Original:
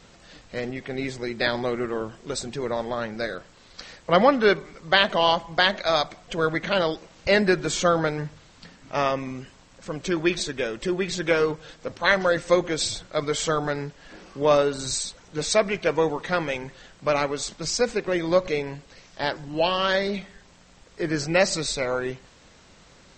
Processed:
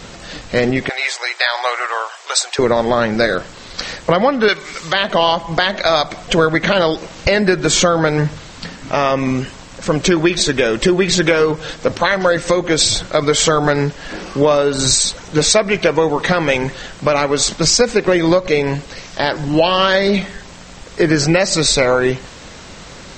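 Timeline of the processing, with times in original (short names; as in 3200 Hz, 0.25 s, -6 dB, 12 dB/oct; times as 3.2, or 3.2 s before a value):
0.89–2.59 inverse Chebyshev high-pass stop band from 220 Hz, stop band 60 dB
4.48–4.93 tilt shelf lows -9 dB, about 1100 Hz
whole clip: compressor 12:1, threshold -26 dBFS; maximiser +18 dB; gain -1 dB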